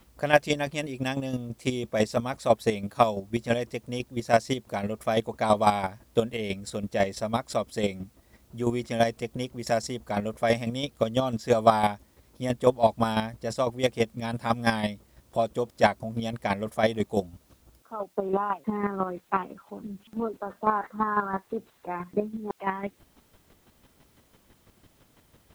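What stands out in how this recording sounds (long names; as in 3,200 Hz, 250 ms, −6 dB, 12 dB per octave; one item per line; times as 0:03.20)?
chopped level 6 Hz, depth 60%, duty 20%
a quantiser's noise floor 12 bits, dither triangular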